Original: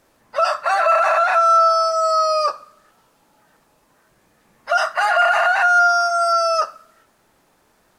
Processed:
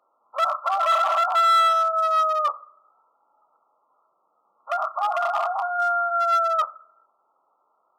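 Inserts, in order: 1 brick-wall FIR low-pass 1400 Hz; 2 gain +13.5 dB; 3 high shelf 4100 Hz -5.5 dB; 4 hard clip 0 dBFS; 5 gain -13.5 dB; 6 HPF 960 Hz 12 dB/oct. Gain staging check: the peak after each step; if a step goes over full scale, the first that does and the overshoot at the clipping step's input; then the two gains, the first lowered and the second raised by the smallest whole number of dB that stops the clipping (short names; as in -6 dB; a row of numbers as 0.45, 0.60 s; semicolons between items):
-6.5, +7.0, +6.5, 0.0, -13.5, -11.0 dBFS; step 2, 6.5 dB; step 2 +6.5 dB, step 5 -6.5 dB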